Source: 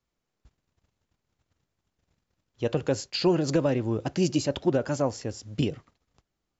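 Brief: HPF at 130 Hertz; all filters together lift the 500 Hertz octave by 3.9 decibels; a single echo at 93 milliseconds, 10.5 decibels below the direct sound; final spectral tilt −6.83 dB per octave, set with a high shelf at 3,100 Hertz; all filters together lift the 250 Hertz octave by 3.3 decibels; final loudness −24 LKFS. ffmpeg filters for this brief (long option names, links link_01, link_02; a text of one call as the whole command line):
ffmpeg -i in.wav -af "highpass=130,equalizer=frequency=250:width_type=o:gain=3.5,equalizer=frequency=500:width_type=o:gain=4,highshelf=frequency=3100:gain=-6,aecho=1:1:93:0.299" out.wav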